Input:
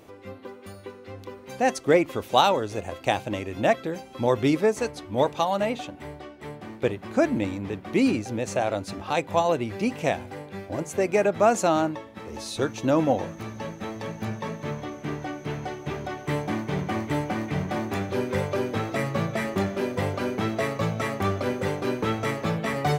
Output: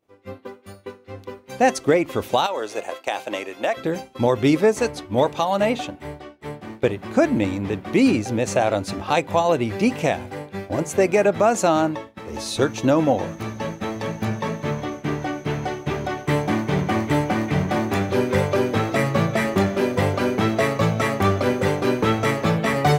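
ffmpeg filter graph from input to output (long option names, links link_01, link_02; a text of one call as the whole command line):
ffmpeg -i in.wav -filter_complex "[0:a]asettb=1/sr,asplit=3[link_01][link_02][link_03];[link_01]atrim=end=2.464[link_04];[link_02]atrim=start=2.46:end=3.77,asetpts=PTS-STARTPTS,afade=type=in:duration=0.004:curve=qsin,afade=type=out:start_time=1.306:duration=0.004:curve=qsin,highpass=450,acompressor=threshold=-24dB:ratio=5:attack=3.2:release=140:knee=1:detection=peak[link_05];[link_03]atrim=start=3.766[link_06];[link_04][link_05]acrossfade=duration=0.004:curve1=hsin:curve2=qsin[link_07];[link_07][link_06]acrossfade=duration=0.004:curve1=qsin:curve2=hsin,agate=range=-33dB:threshold=-35dB:ratio=3:detection=peak,alimiter=limit=-13.5dB:level=0:latency=1:release=280,volume=6.5dB" out.wav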